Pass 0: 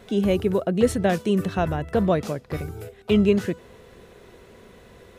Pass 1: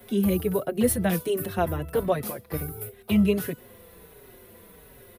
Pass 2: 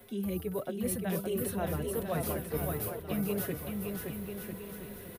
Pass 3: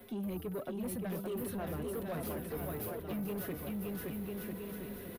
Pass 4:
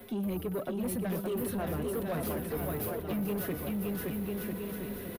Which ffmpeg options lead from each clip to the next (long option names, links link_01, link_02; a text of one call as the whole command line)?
ffmpeg -i in.wav -filter_complex "[0:a]acrossover=split=140|550|2200[link_01][link_02][link_03][link_04];[link_04]aexciter=amount=5:drive=9.4:freq=9800[link_05];[link_01][link_02][link_03][link_05]amix=inputs=4:normalize=0,asplit=2[link_06][link_07];[link_07]adelay=5,afreqshift=-1.4[link_08];[link_06][link_08]amix=inputs=2:normalize=1" out.wav
ffmpeg -i in.wav -af "areverse,acompressor=threshold=-32dB:ratio=6,areverse,aecho=1:1:570|997.5|1318|1559|1739:0.631|0.398|0.251|0.158|0.1" out.wav
ffmpeg -i in.wav -af "equalizer=frequency=125:width_type=o:width=1:gain=-3,equalizer=frequency=250:width_type=o:width=1:gain=5,equalizer=frequency=8000:width_type=o:width=1:gain=-5,acompressor=threshold=-34dB:ratio=2,asoftclip=type=tanh:threshold=-33dB" out.wav
ffmpeg -i in.wav -filter_complex "[0:a]asplit=2[link_01][link_02];[link_02]adelay=116.6,volume=-18dB,highshelf=frequency=4000:gain=-2.62[link_03];[link_01][link_03]amix=inputs=2:normalize=0,volume=5dB" out.wav